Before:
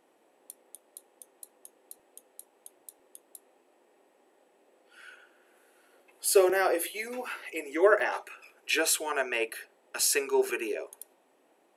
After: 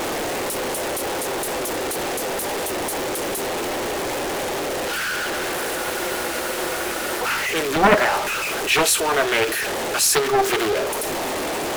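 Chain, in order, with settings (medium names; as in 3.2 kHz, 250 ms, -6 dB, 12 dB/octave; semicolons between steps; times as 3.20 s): jump at every zero crossing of -25 dBFS; spectral freeze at 5.79 s, 1.41 s; loudspeaker Doppler distortion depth 0.76 ms; trim +6 dB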